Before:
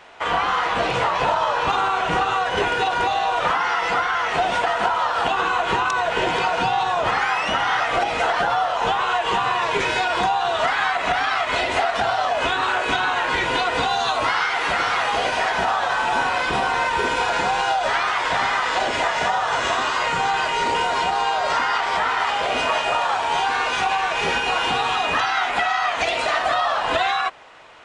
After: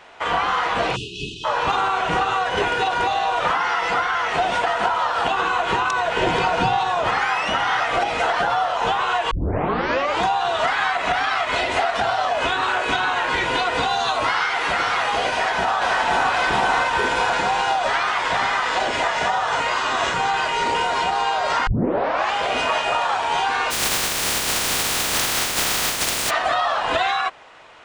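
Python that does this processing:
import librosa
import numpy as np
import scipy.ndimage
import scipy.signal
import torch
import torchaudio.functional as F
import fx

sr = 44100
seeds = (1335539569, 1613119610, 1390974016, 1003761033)

y = fx.spec_erase(x, sr, start_s=0.96, length_s=0.48, low_hz=440.0, high_hz=2500.0)
y = fx.low_shelf(y, sr, hz=330.0, db=7.5, at=(6.21, 6.77))
y = fx.echo_throw(y, sr, start_s=15.29, length_s=1.02, ms=520, feedback_pct=60, wet_db=-3.0)
y = fx.spec_flatten(y, sr, power=0.12, at=(23.7, 26.29), fade=0.02)
y = fx.edit(y, sr, fx.tape_start(start_s=9.31, length_s=0.93),
    fx.reverse_span(start_s=19.6, length_s=0.54),
    fx.tape_start(start_s=21.67, length_s=0.66), tone=tone)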